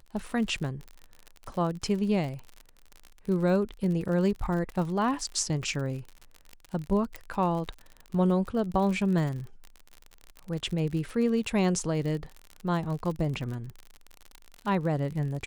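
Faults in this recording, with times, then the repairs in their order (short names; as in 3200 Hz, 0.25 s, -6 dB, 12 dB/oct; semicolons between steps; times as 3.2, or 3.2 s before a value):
crackle 53/s -34 dBFS
7.16 pop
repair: de-click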